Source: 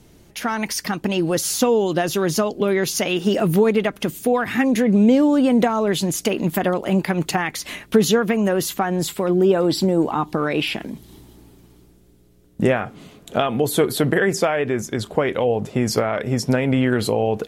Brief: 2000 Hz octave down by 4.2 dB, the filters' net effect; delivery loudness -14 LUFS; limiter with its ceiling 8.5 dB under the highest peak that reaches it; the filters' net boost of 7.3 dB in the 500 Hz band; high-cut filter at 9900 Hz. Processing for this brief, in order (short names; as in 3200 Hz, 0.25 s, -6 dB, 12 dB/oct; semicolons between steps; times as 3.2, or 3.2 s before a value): LPF 9900 Hz; bell 500 Hz +9 dB; bell 2000 Hz -6 dB; gain +3.5 dB; limiter -3.5 dBFS